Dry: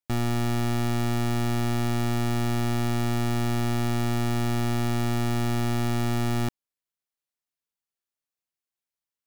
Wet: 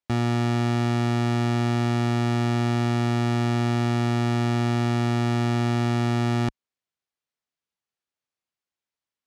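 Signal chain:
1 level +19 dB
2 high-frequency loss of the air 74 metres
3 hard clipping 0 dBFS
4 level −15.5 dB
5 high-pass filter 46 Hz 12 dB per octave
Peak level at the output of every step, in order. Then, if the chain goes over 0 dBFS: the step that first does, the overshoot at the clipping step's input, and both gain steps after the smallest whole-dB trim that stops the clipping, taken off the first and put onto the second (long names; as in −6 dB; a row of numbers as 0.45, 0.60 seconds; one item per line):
−5.5, −5.5, −5.5, −21.0, −14.5 dBFS
no step passes full scale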